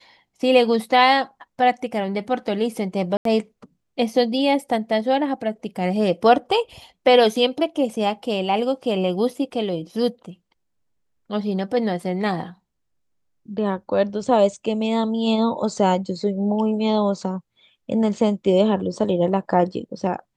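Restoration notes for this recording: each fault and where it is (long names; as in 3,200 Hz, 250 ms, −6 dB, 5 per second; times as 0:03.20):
0:03.17–0:03.25: drop-out 83 ms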